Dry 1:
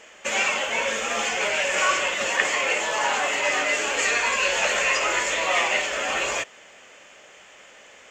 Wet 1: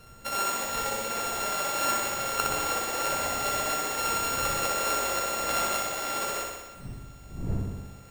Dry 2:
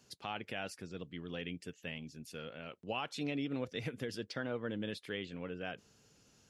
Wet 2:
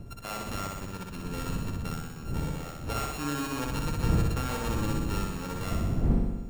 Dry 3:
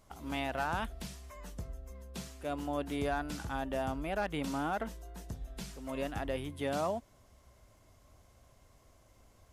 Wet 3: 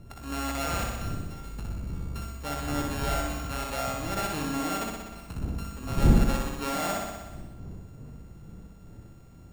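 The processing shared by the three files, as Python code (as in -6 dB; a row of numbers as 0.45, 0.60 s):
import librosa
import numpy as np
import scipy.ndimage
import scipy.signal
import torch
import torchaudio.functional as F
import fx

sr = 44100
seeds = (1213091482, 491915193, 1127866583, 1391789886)

y = np.r_[np.sort(x[:len(x) // 32 * 32].reshape(-1, 32), axis=1).ravel(), x[len(x) // 32 * 32:]]
y = fx.dmg_wind(y, sr, seeds[0], corner_hz=140.0, level_db=-37.0)
y = fx.room_flutter(y, sr, wall_m=10.6, rt60_s=1.2)
y = y * 10.0 ** (-30 / 20.0) / np.sqrt(np.mean(np.square(y)))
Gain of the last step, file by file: -6.5, +2.5, +1.5 dB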